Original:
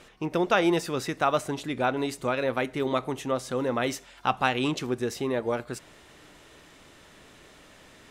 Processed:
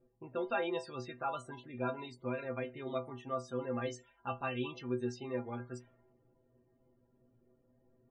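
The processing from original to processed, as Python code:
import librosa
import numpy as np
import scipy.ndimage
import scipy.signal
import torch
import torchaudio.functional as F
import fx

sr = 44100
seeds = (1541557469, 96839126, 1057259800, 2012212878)

y = fx.spec_topn(x, sr, count=64)
y = fx.stiff_resonator(y, sr, f0_hz=120.0, decay_s=0.27, stiffness=0.008)
y = fx.env_lowpass(y, sr, base_hz=380.0, full_db=-35.0)
y = y * librosa.db_to_amplitude(-2.0)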